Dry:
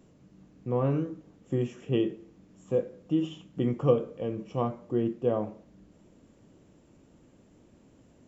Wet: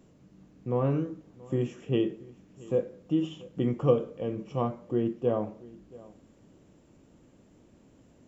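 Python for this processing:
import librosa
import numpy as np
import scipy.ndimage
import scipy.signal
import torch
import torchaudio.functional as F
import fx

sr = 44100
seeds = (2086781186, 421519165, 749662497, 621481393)

y = x + 10.0 ** (-21.5 / 20.0) * np.pad(x, (int(679 * sr / 1000.0), 0))[:len(x)]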